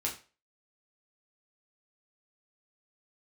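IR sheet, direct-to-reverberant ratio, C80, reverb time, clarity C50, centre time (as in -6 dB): -3.0 dB, 15.0 dB, 0.35 s, 10.0 dB, 20 ms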